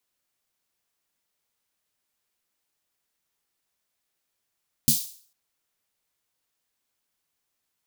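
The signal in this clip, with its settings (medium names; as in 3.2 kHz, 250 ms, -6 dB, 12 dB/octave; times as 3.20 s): snare drum length 0.45 s, tones 150 Hz, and 230 Hz, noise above 3.9 kHz, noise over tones 3 dB, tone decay 0.15 s, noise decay 0.47 s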